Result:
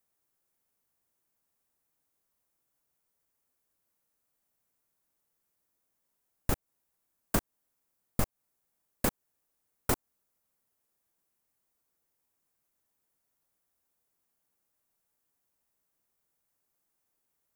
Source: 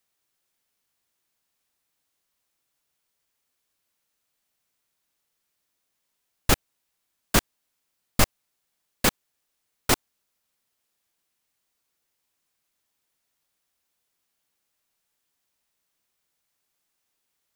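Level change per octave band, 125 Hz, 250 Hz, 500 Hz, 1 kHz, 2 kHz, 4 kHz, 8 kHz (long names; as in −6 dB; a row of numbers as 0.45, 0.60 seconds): −6.5, −6.5, −7.0, −9.5, −12.5, −16.0, −11.0 decibels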